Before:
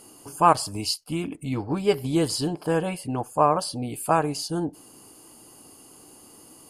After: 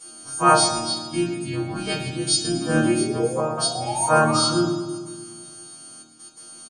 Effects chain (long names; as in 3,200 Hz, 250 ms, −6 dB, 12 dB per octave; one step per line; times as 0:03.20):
every partial snapped to a pitch grid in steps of 2 semitones
Chebyshev low-pass filter 9,500 Hz, order 5
mains-hum notches 60/120/180/240 Hz
comb filter 6.3 ms, depth 93%
sound drawn into the spectrogram rise, 0:02.55–0:04.50, 260–1,400 Hz −25 dBFS
gate pattern "xxxxxxxxx..x.xx" 172 BPM −12 dB
harmonic and percussive parts rebalanced percussive −6 dB
pitch-shifted copies added −5 semitones −10 dB
resonators tuned to a chord A#2 sus4, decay 0.24 s
convolution reverb RT60 1.6 s, pre-delay 4 ms, DRR 1 dB
level +9 dB